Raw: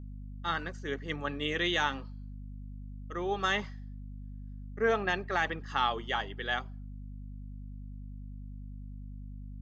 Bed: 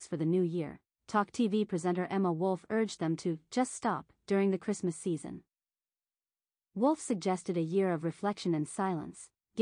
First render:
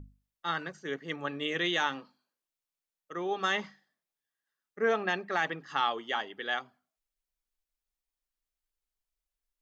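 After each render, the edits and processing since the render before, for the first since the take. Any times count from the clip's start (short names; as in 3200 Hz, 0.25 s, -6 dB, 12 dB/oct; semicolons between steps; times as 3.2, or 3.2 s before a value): notches 50/100/150/200/250 Hz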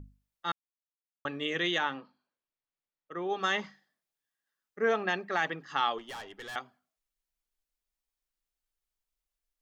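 0.52–1.25 mute; 1.78–3.3 air absorption 200 m; 5.98–6.56 tube stage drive 39 dB, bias 0.5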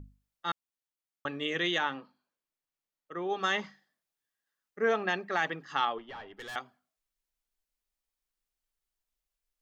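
5.85–6.37 air absorption 300 m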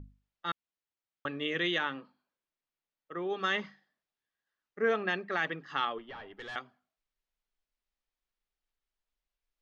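LPF 4200 Hz 12 dB/oct; dynamic EQ 820 Hz, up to -7 dB, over -47 dBFS, Q 2.5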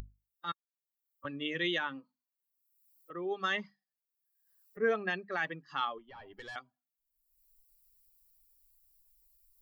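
per-bin expansion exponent 1.5; upward compressor, threshold -40 dBFS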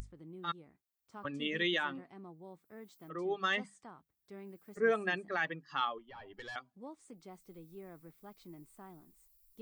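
add bed -20.5 dB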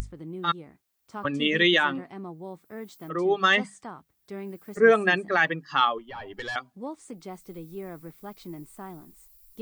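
gain +12 dB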